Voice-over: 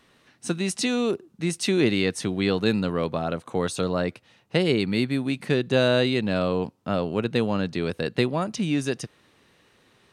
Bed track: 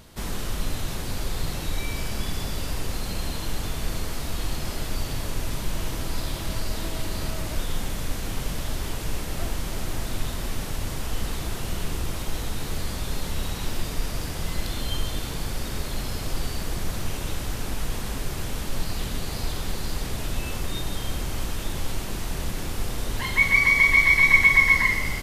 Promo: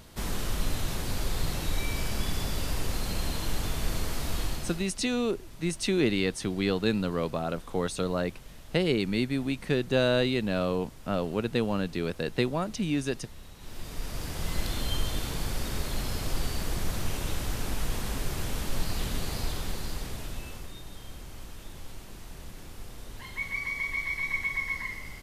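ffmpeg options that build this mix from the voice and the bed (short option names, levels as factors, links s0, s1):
-filter_complex "[0:a]adelay=4200,volume=0.631[s0];[1:a]volume=5.96,afade=t=out:st=4.38:d=0.52:silence=0.133352,afade=t=in:st=13.58:d=1:silence=0.141254,afade=t=out:st=19.24:d=1.52:silence=0.237137[s1];[s0][s1]amix=inputs=2:normalize=0"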